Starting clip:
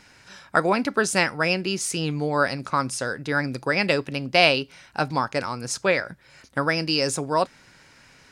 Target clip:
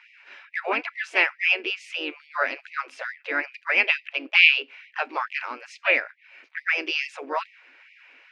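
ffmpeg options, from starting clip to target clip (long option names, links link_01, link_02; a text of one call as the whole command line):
ffmpeg -i in.wav -filter_complex "[0:a]asplit=2[link_01][link_02];[link_02]asetrate=52444,aresample=44100,atempo=0.840896,volume=-8dB[link_03];[link_01][link_03]amix=inputs=2:normalize=0,lowpass=frequency=2500:width_type=q:width=4,afftfilt=real='re*gte(b*sr/1024,230*pow(1900/230,0.5+0.5*sin(2*PI*2.3*pts/sr)))':imag='im*gte(b*sr/1024,230*pow(1900/230,0.5+0.5*sin(2*PI*2.3*pts/sr)))':win_size=1024:overlap=0.75,volume=-5.5dB" out.wav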